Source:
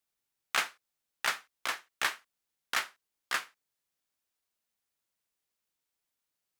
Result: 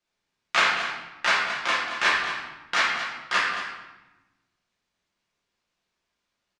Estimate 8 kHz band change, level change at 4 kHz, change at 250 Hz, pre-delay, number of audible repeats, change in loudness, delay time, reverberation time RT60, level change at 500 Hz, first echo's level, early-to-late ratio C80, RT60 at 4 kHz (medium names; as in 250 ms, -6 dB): +2.5 dB, +9.5 dB, +13.5 dB, 6 ms, 1, +9.5 dB, 224 ms, 1.1 s, +12.5 dB, -10.0 dB, 3.0 dB, 0.90 s